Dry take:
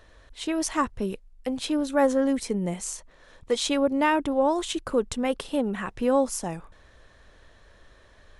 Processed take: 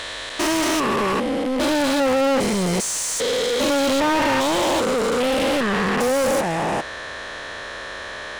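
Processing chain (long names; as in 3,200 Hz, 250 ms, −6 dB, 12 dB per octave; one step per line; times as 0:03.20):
spectrum averaged block by block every 400 ms
mid-hump overdrive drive 34 dB, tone 5,500 Hz, clips at −15 dBFS
level +2 dB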